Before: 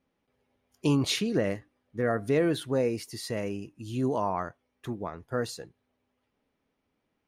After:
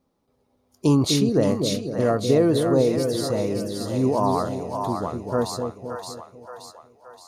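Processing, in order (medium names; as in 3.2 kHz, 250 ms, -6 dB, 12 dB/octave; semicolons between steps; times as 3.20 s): high-order bell 2.2 kHz -10 dB 1.3 oct; two-band feedback delay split 580 Hz, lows 251 ms, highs 573 ms, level -4.5 dB; trim +6.5 dB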